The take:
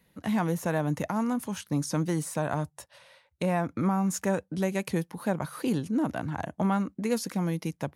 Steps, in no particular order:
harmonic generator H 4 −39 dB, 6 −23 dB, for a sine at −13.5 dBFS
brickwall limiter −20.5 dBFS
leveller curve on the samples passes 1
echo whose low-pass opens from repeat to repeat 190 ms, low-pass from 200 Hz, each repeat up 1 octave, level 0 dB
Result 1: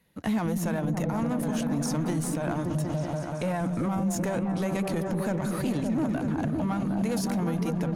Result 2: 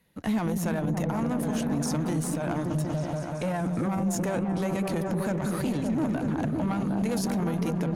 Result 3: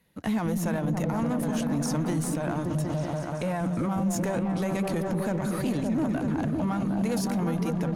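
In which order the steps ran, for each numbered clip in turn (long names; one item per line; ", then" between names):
harmonic generator, then leveller curve on the samples, then echo whose low-pass opens from repeat to repeat, then brickwall limiter
leveller curve on the samples, then echo whose low-pass opens from repeat to repeat, then brickwall limiter, then harmonic generator
harmonic generator, then echo whose low-pass opens from repeat to repeat, then leveller curve on the samples, then brickwall limiter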